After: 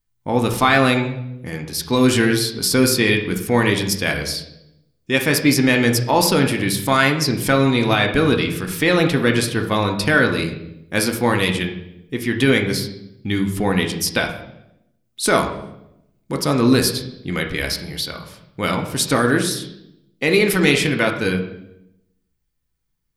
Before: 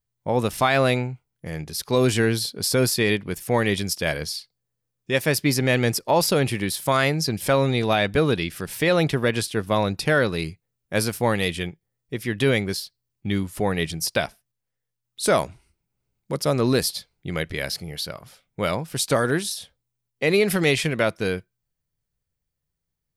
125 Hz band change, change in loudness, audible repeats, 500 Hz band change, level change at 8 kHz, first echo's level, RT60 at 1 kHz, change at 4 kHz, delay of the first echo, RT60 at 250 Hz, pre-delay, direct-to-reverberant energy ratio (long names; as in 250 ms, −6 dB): +3.5 dB, +4.5 dB, no echo audible, +2.5 dB, +4.5 dB, no echo audible, 0.75 s, +5.0 dB, no echo audible, 1.1 s, 3 ms, 3.0 dB